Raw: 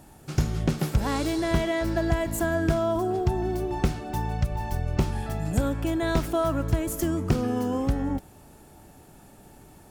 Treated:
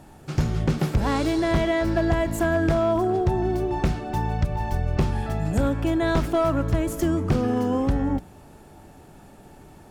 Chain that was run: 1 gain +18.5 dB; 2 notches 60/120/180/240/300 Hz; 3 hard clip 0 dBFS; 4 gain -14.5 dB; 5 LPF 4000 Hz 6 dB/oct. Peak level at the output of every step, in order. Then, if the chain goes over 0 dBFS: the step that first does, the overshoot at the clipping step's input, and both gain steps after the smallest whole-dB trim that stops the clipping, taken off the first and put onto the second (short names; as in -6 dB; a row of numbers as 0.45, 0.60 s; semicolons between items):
+8.0, +8.0, 0.0, -14.5, -14.5 dBFS; step 1, 8.0 dB; step 1 +10.5 dB, step 4 -6.5 dB